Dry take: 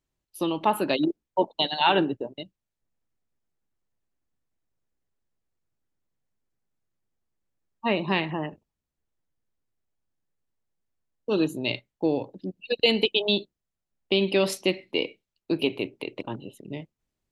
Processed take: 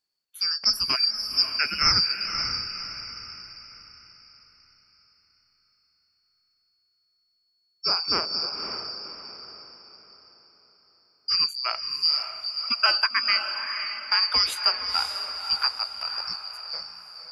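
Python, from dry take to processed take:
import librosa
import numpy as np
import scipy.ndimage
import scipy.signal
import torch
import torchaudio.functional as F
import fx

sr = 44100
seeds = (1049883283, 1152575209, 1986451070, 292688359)

y = fx.band_shuffle(x, sr, order='2341')
y = fx.echo_diffused(y, sr, ms=541, feedback_pct=41, wet_db=-7)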